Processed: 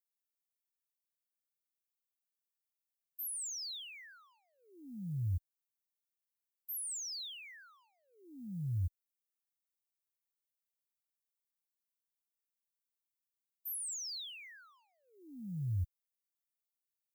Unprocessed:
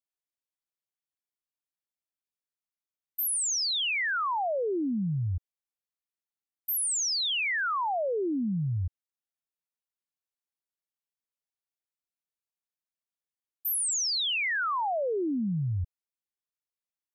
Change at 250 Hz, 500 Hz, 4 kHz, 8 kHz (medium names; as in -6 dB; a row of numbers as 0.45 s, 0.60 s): -16.0 dB, under -35 dB, -15.5 dB, -12.0 dB